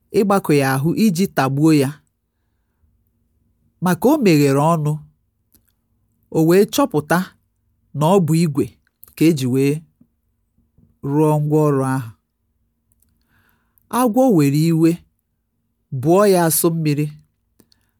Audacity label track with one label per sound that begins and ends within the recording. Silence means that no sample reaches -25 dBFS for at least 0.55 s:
3.820000	4.970000	sound
6.320000	7.250000	sound
7.950000	9.780000	sound
11.040000	12.030000	sound
13.930000	14.950000	sound
15.930000	17.080000	sound